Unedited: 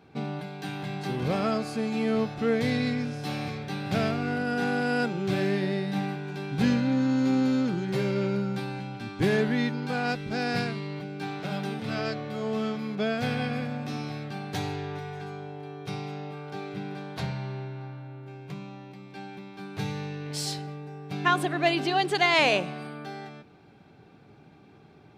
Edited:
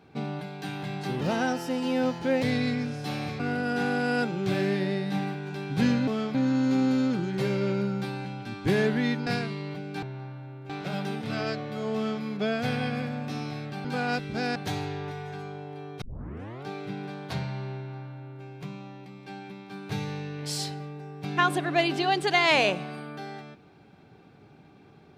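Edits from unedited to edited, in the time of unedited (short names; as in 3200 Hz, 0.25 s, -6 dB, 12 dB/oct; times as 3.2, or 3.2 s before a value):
1.21–2.62 speed 116%
3.59–4.21 cut
9.81–10.52 move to 14.43
12.53–12.8 copy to 6.89
15.89 tape start 0.63 s
17.64–18.31 copy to 11.28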